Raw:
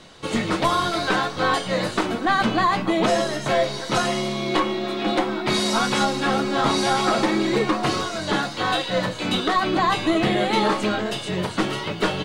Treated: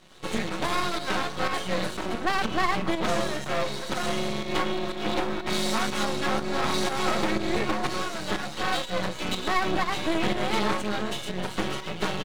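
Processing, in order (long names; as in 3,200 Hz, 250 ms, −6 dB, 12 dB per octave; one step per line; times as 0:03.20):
notch filter 4,900 Hz, Q 11
comb filter 5.4 ms, depth 34%
half-wave rectification
fake sidechain pumping 122 BPM, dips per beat 1, −8 dB, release 195 ms
level −1.5 dB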